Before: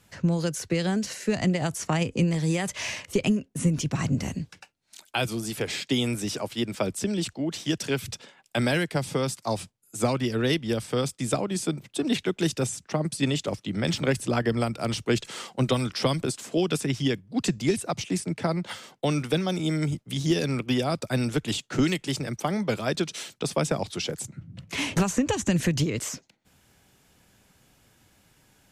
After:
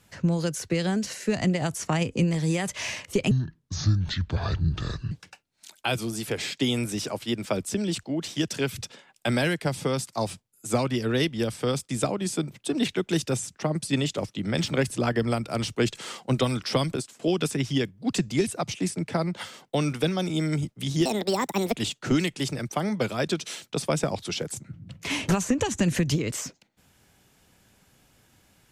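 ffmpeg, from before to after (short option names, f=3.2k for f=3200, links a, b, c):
-filter_complex "[0:a]asplit=6[a][b][c][d][e][f];[a]atrim=end=3.314[g];[b]atrim=start=3.31:end=4.41,asetpts=PTS-STARTPTS,asetrate=26901,aresample=44100[h];[c]atrim=start=4.406:end=16.49,asetpts=PTS-STARTPTS,afade=t=out:st=11.814:d=0.27:silence=0.0668344[i];[d]atrim=start=16.49:end=20.354,asetpts=PTS-STARTPTS,afade=t=in:d=0.004:c=hsin:silence=0.0668344[j];[e]atrim=start=20.35:end=21.44,asetpts=PTS-STARTPTS,asetrate=67914,aresample=44100[k];[f]atrim=start=21.436[l];[g][h]acrossfade=d=0.004:c1=hsin:c2=hsin[m];[i][j]concat=n=2:v=0:a=1[n];[m][n]acrossfade=d=0.004:c1=hsin:c2=hsin[o];[o][k]acrossfade=d=0.004:c1=hsin:c2=hsin[p];[p][l]acrossfade=d=0.004:c1=hsin:c2=hsin"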